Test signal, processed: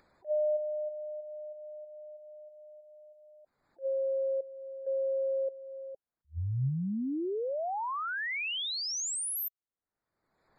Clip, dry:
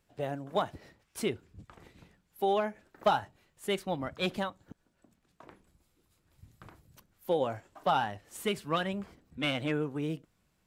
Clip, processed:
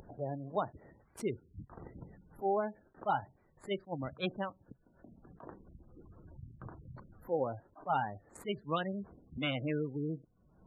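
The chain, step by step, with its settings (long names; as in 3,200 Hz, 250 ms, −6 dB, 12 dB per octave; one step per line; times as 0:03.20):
adaptive Wiener filter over 15 samples
gate on every frequency bin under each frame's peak −20 dB strong
upward compression, threshold −34 dBFS
dynamic equaliser 130 Hz, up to +5 dB, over −58 dBFS, Q 6.6
level that may rise only so fast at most 360 dB per second
level −3 dB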